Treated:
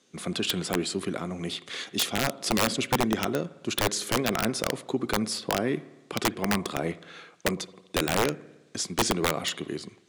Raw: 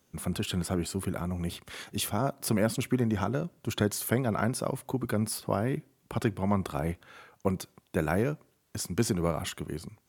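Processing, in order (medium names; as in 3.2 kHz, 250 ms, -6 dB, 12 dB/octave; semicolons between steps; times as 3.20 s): cabinet simulation 260–8300 Hz, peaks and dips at 600 Hz -4 dB, 890 Hz -8 dB, 1.4 kHz -4 dB, 3.8 kHz +5 dB; spring tank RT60 1.1 s, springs 54 ms, chirp 30 ms, DRR 17.5 dB; integer overflow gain 22 dB; trim +6.5 dB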